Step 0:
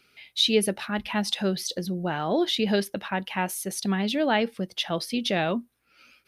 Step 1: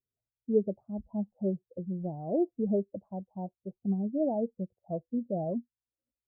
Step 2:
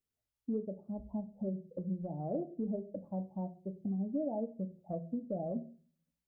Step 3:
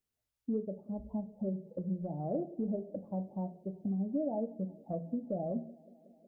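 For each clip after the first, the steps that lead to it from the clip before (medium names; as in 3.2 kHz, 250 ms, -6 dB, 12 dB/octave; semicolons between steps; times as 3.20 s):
expander on every frequency bin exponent 1.5; steep low-pass 700 Hz 48 dB/octave; trim -2 dB
compression 4:1, threshold -37 dBFS, peak gain reduction 14.5 dB; reverberation RT60 0.40 s, pre-delay 4 ms, DRR 6 dB; trim +1 dB
feedback echo behind a band-pass 184 ms, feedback 80%, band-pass 420 Hz, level -23.5 dB; trim +1.5 dB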